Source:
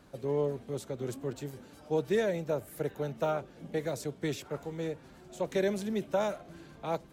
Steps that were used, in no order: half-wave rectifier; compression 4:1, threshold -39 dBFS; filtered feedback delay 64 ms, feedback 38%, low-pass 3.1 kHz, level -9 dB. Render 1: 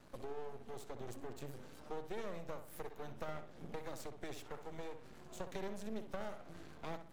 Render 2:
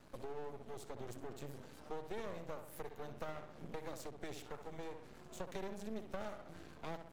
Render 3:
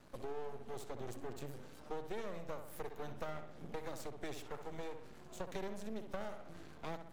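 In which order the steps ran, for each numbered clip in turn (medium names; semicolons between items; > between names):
compression > half-wave rectifier > filtered feedback delay; filtered feedback delay > compression > half-wave rectifier; half-wave rectifier > filtered feedback delay > compression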